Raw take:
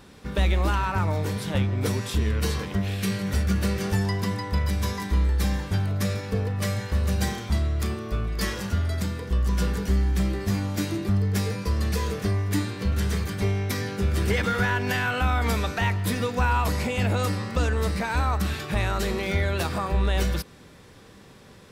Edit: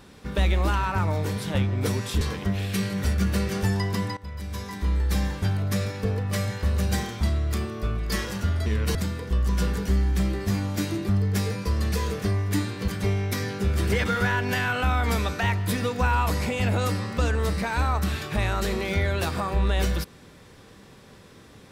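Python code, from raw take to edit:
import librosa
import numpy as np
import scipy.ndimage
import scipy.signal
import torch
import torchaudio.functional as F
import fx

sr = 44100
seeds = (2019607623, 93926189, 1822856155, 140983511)

y = fx.edit(x, sr, fx.move(start_s=2.21, length_s=0.29, to_s=8.95),
    fx.fade_in_from(start_s=4.46, length_s=1.0, floor_db=-17.5),
    fx.cut(start_s=12.88, length_s=0.38), tone=tone)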